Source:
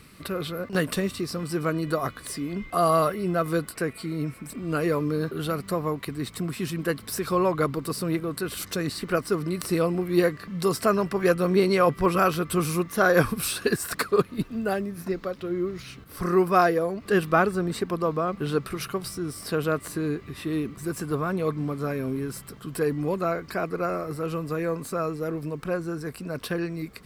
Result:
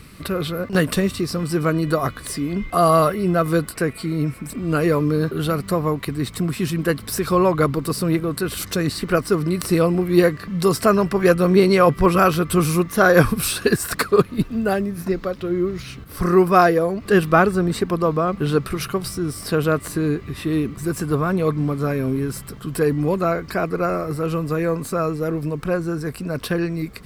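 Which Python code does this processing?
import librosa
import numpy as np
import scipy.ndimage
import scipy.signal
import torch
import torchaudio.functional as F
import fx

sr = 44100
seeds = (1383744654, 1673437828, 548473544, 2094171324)

y = fx.low_shelf(x, sr, hz=120.0, db=7.5)
y = F.gain(torch.from_numpy(y), 5.5).numpy()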